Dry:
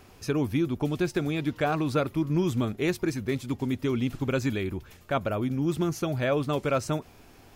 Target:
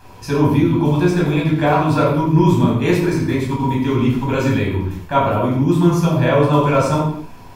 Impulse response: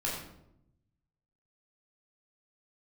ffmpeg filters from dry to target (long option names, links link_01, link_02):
-filter_complex "[0:a]equalizer=frequency=970:width_type=o:width=0.22:gain=13.5[link_01];[1:a]atrim=start_sample=2205,afade=type=out:start_time=0.33:duration=0.01,atrim=end_sample=14994[link_02];[link_01][link_02]afir=irnorm=-1:irlink=0,volume=4dB"